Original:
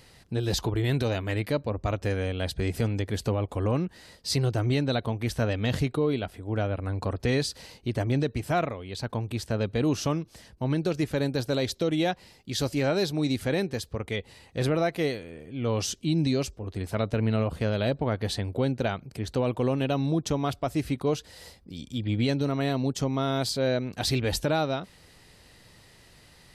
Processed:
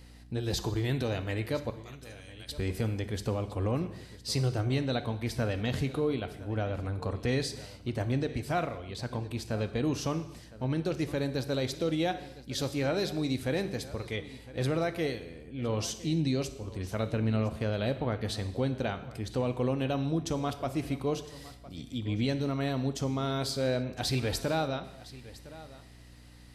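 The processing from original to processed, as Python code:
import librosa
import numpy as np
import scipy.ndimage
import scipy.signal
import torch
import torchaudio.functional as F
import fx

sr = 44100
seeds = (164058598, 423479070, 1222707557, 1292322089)

p1 = fx.differentiator(x, sr, at=(1.7, 2.49))
p2 = fx.add_hum(p1, sr, base_hz=60, snr_db=19)
p3 = p2 + fx.echo_single(p2, sr, ms=1010, db=-18.0, dry=0)
p4 = fx.rev_gated(p3, sr, seeds[0], gate_ms=310, shape='falling', drr_db=9.5)
y = p4 * 10.0 ** (-4.5 / 20.0)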